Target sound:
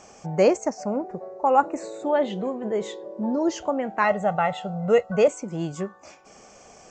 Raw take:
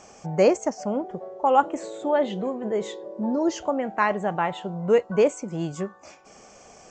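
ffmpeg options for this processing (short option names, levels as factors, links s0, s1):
-filter_complex "[0:a]asettb=1/sr,asplit=3[s0][s1][s2];[s0]atrim=end=0.594[s3];[s1]atrim=start=0.59:end=2.06,asetpts=PTS-STARTPTS,afade=t=in:d=0.004:c=qsin,afade=t=out:st=1.466:d=0.004:c=qsin,asuperstop=centerf=3200:order=4:qfactor=3.2[s4];[s2]atrim=start=2.056[s5];[s3][s4]acrossfade=d=0.004:c1=hsin:c2=qsin[s6];[s6][s5]acrossfade=d=0.004:c1=qsin:c2=hsin,asettb=1/sr,asplit=3[s7][s8][s9];[s7]atrim=end=4.044[s10];[s8]atrim=start=4.04:end=5.28,asetpts=PTS-STARTPTS,afade=t=in:d=0.004:c=qsin,afade=t=out:st=1.236:d=0.004:c=qsin,aecho=1:1:1.5:0.76,atrim=end_sample=54684[s11];[s9]atrim=start=5.276[s12];[s10][s11]acrossfade=d=0.004:c1=hsin:c2=qsin[s13];[s13][s12]acrossfade=d=0.004:c1=qsin:c2=hsin"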